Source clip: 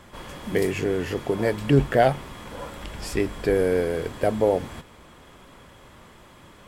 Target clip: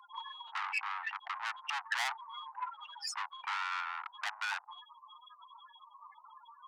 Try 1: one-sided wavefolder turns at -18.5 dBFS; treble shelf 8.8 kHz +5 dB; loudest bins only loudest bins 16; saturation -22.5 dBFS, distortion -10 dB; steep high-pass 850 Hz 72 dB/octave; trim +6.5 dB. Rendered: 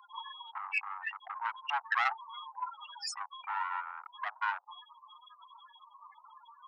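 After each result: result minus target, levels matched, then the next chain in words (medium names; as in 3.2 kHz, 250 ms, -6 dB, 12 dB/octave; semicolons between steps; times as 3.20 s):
one-sided wavefolder: distortion +18 dB; saturation: distortion -7 dB
one-sided wavefolder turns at -9.5 dBFS; treble shelf 8.8 kHz +5 dB; loudest bins only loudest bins 16; saturation -22.5 dBFS, distortion -8 dB; steep high-pass 850 Hz 72 dB/octave; trim +6.5 dB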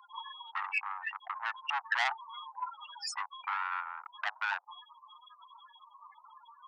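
saturation: distortion -5 dB
one-sided wavefolder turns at -9.5 dBFS; treble shelf 8.8 kHz +5 dB; loudest bins only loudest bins 16; saturation -30.5 dBFS, distortion -3 dB; steep high-pass 850 Hz 72 dB/octave; trim +6.5 dB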